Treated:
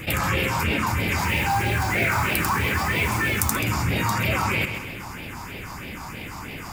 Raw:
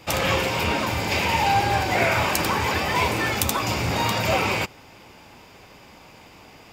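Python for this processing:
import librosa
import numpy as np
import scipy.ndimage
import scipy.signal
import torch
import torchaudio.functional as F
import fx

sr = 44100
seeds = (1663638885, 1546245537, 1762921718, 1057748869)

y = fx.phaser_stages(x, sr, stages=4, low_hz=450.0, high_hz=1100.0, hz=3.1, feedback_pct=25)
y = fx.mod_noise(y, sr, seeds[0], snr_db=19, at=(1.21, 3.56), fade=0.02)
y = fx.echo_feedback(y, sr, ms=132, feedback_pct=29, wet_db=-14.5)
y = fx.env_flatten(y, sr, amount_pct=50)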